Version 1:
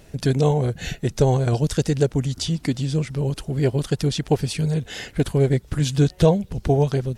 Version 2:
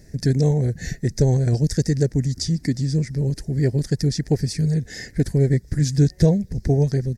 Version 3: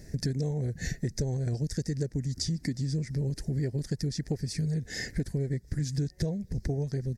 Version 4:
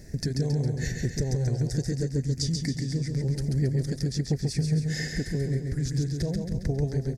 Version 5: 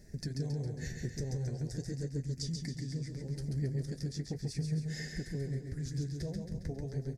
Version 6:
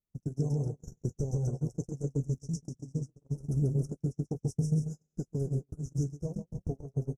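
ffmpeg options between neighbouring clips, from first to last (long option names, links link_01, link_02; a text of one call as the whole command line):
ffmpeg -i in.wav -af "firequalizer=gain_entry='entry(200,0);entry(1200,-21);entry(1800,1);entry(2900,-22);entry(4900,2);entry(9000,-5)':delay=0.05:min_phase=1,volume=2dB" out.wav
ffmpeg -i in.wav -af "acompressor=threshold=-28dB:ratio=6" out.wav
ffmpeg -i in.wav -af "aecho=1:1:136|272|408|544|680|816|952:0.596|0.316|0.167|0.0887|0.047|0.0249|0.0132,volume=1.5dB" out.wav
ffmpeg -i in.wav -af "flanger=delay=4.8:depth=9.6:regen=-49:speed=0.4:shape=sinusoidal,volume=-6dB" out.wav
ffmpeg -i in.wav -af "asuperstop=centerf=2800:order=20:qfactor=0.67,agate=range=-44dB:threshold=-36dB:ratio=16:detection=peak,volume=6dB" out.wav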